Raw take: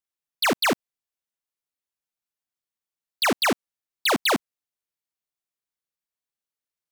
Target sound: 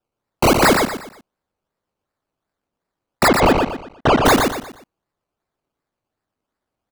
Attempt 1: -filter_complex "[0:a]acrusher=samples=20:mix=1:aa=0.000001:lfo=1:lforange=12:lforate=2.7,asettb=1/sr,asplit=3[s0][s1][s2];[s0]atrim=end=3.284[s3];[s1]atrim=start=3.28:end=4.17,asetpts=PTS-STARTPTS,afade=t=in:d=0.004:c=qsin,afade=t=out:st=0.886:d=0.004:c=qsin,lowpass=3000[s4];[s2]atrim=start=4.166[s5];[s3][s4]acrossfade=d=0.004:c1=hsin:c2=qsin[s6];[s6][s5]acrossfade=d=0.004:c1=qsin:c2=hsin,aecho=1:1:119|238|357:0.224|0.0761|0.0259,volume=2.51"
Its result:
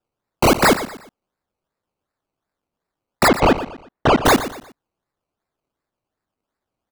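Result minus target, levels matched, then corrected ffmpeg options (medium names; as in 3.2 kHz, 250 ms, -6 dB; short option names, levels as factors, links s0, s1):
echo-to-direct -8.5 dB
-filter_complex "[0:a]acrusher=samples=20:mix=1:aa=0.000001:lfo=1:lforange=12:lforate=2.7,asettb=1/sr,asplit=3[s0][s1][s2];[s0]atrim=end=3.284[s3];[s1]atrim=start=3.28:end=4.17,asetpts=PTS-STARTPTS,afade=t=in:d=0.004:c=qsin,afade=t=out:st=0.886:d=0.004:c=qsin,lowpass=3000[s4];[s2]atrim=start=4.166[s5];[s3][s4]acrossfade=d=0.004:c1=hsin:c2=qsin[s6];[s6][s5]acrossfade=d=0.004:c1=qsin:c2=hsin,aecho=1:1:119|238|357|476:0.596|0.203|0.0689|0.0234,volume=2.51"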